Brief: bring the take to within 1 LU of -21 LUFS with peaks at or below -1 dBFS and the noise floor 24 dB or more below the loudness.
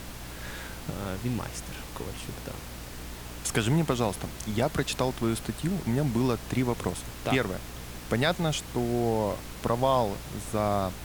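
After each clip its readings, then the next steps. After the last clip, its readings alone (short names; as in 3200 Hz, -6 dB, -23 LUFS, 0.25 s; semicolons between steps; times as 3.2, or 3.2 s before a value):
hum 60 Hz; harmonics up to 300 Hz; hum level -42 dBFS; noise floor -41 dBFS; noise floor target -54 dBFS; loudness -29.5 LUFS; peak -11.5 dBFS; loudness target -21.0 LUFS
-> de-hum 60 Hz, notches 5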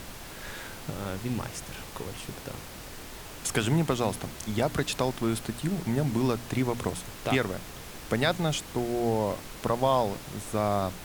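hum none; noise floor -43 dBFS; noise floor target -54 dBFS
-> noise print and reduce 11 dB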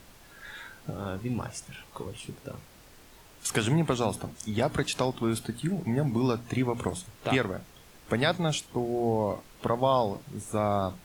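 noise floor -54 dBFS; loudness -29.5 LUFS; peak -11.5 dBFS; loudness target -21.0 LUFS
-> gain +8.5 dB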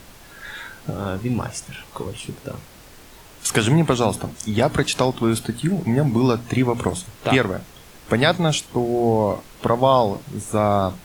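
loudness -21.0 LUFS; peak -3.0 dBFS; noise floor -45 dBFS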